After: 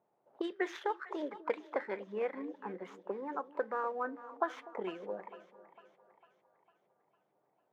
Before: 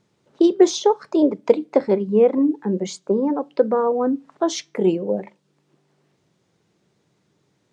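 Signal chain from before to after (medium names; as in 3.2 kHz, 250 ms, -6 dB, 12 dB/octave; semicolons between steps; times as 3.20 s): median filter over 9 samples; auto-wah 730–1800 Hz, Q 3.3, up, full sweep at -15 dBFS; two-band feedback delay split 680 Hz, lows 247 ms, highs 452 ms, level -15 dB; trim +1 dB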